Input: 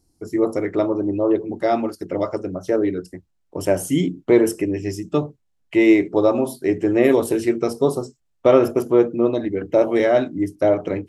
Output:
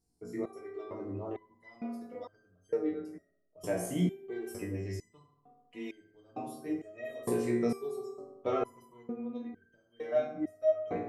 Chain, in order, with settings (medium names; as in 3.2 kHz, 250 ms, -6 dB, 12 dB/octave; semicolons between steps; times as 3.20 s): 9.06–10.12 s: compression 6:1, threshold -22 dBFS, peak gain reduction 11 dB; reverberation RT60 1.1 s, pre-delay 3 ms, DRR 0 dB; resonator arpeggio 2.2 Hz 60–1600 Hz; trim -6.5 dB